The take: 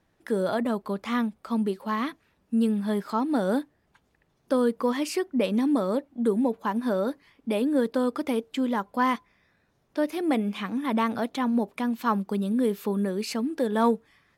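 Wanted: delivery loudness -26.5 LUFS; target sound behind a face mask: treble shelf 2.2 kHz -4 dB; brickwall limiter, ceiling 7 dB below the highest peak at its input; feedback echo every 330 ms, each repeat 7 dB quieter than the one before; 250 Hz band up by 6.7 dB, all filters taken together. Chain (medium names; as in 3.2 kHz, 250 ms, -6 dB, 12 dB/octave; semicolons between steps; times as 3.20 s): peaking EQ 250 Hz +7.5 dB; peak limiter -15.5 dBFS; treble shelf 2.2 kHz -4 dB; feedback delay 330 ms, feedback 45%, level -7 dB; trim -3 dB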